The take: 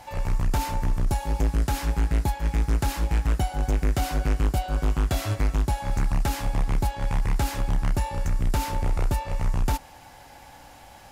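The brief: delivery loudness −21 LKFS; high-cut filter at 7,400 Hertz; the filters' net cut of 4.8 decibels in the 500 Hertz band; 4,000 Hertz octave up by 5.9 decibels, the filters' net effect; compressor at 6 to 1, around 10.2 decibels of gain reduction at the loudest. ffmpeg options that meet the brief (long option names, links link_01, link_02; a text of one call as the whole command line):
ffmpeg -i in.wav -af "lowpass=7400,equalizer=frequency=500:width_type=o:gain=-6.5,equalizer=frequency=4000:width_type=o:gain=8,acompressor=threshold=-30dB:ratio=6,volume=15dB" out.wav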